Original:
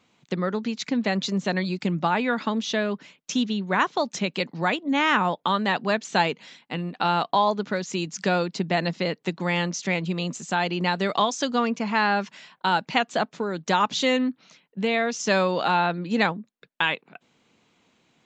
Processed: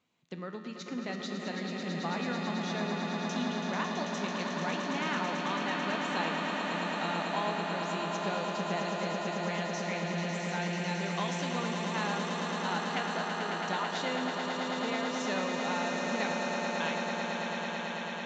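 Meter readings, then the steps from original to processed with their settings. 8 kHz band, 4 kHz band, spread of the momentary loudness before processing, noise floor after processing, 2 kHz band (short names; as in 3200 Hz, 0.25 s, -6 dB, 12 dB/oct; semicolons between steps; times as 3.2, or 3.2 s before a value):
-7.0 dB, -7.5 dB, 7 LU, -39 dBFS, -7.5 dB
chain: resonator 83 Hz, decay 1.9 s, harmonics all, mix 80%; on a send: swelling echo 0.11 s, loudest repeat 8, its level -7 dB; on the sum: gain -1.5 dB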